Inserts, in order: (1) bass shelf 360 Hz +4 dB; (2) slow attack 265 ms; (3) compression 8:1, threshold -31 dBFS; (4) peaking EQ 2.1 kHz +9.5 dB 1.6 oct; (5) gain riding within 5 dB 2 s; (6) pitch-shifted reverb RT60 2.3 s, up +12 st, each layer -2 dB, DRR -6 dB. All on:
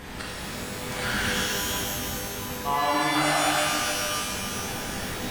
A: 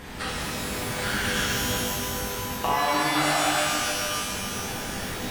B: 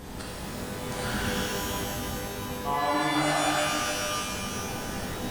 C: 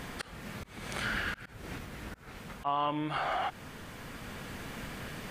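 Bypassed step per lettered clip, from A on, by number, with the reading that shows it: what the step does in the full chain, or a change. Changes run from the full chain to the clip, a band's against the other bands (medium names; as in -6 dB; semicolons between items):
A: 2, momentary loudness spread change -2 LU; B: 4, 125 Hz band +3.5 dB; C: 6, loudness change -11.0 LU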